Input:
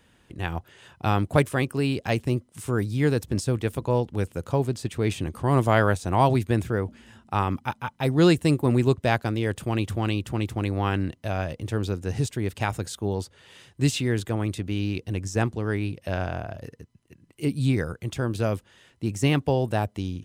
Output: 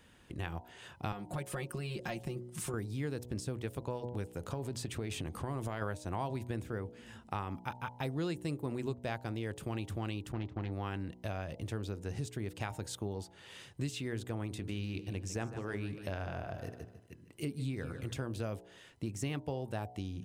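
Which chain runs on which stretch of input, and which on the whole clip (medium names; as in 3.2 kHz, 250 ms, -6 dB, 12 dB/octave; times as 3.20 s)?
1.12–2.74 s: compression 3:1, threshold -30 dBFS + comb 5.6 ms, depth 94%
4.32–5.82 s: compression, threshold -23 dBFS + transient shaper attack 0 dB, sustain +4 dB
10.32–10.72 s: expander -30 dBFS + overload inside the chain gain 20.5 dB + distance through air 190 m
14.46–18.26 s: de-hum 106.7 Hz, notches 16 + feedback delay 151 ms, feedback 39%, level -14 dB
whole clip: de-hum 60.96 Hz, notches 16; compression 4:1, threshold -35 dBFS; trim -1.5 dB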